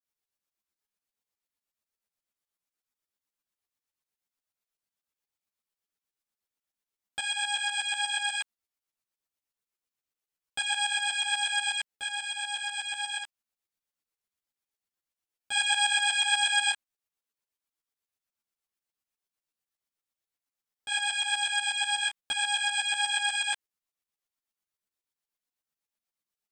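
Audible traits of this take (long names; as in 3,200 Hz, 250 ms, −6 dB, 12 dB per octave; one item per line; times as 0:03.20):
tremolo saw up 8.2 Hz, depth 80%
a shimmering, thickened sound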